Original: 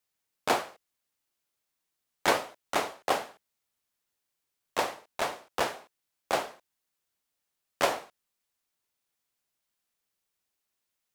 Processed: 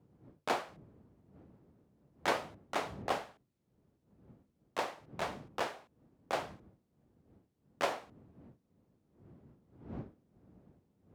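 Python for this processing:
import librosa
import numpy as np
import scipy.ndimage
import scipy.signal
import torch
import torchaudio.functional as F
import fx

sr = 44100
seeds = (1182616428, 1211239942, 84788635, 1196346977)

y = fx.dmg_wind(x, sr, seeds[0], corner_hz=240.0, level_db=-48.0)
y = scipy.signal.sosfilt(scipy.signal.butter(2, 79.0, 'highpass', fs=sr, output='sos'), y)
y = fx.high_shelf(y, sr, hz=7300.0, db=-10.0)
y = F.gain(torch.from_numpy(y), -6.5).numpy()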